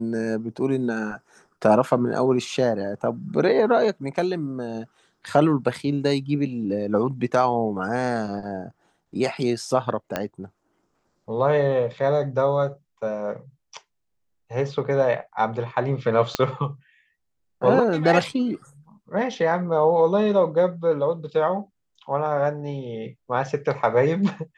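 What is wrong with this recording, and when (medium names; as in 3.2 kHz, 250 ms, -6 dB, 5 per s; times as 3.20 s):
10.16 s: pop -10 dBFS
16.35 s: pop -7 dBFS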